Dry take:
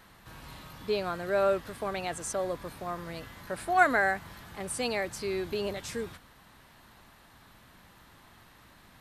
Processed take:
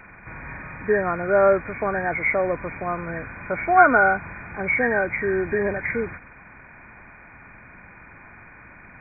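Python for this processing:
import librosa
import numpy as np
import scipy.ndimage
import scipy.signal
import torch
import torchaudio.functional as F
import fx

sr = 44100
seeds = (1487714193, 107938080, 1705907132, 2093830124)

y = fx.freq_compress(x, sr, knee_hz=1400.0, ratio=4.0)
y = y * 10.0 ** (9.0 / 20.0)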